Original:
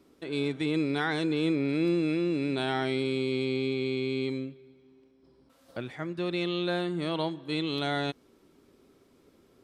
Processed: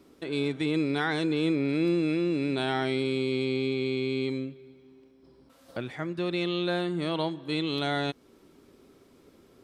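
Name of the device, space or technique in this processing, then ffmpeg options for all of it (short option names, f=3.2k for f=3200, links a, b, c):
parallel compression: -filter_complex "[0:a]asplit=2[a][b];[b]acompressor=threshold=-40dB:ratio=6,volume=-4.5dB[c];[a][c]amix=inputs=2:normalize=0"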